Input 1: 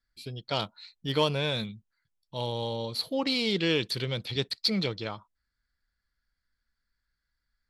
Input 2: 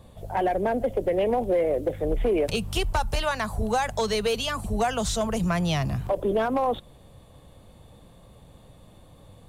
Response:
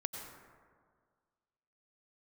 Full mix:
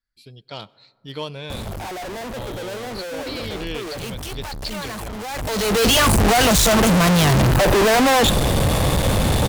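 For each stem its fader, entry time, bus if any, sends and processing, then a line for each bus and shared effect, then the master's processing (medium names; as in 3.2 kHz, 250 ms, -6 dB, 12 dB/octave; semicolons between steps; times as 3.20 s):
-5.5 dB, 0.00 s, send -18.5 dB, none
-1.0 dB, 1.50 s, no send, fuzz box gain 56 dB, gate -59 dBFS; auto duck -16 dB, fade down 1.90 s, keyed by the first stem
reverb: on, RT60 1.8 s, pre-delay 83 ms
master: none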